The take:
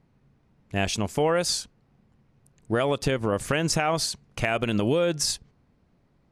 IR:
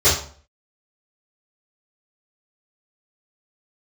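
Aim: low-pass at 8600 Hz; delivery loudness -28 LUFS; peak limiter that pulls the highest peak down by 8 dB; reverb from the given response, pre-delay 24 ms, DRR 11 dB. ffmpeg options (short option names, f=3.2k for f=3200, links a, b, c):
-filter_complex "[0:a]lowpass=8.6k,alimiter=limit=-19.5dB:level=0:latency=1,asplit=2[a][b];[1:a]atrim=start_sample=2205,adelay=24[c];[b][c]afir=irnorm=-1:irlink=0,volume=-32dB[d];[a][d]amix=inputs=2:normalize=0,volume=2dB"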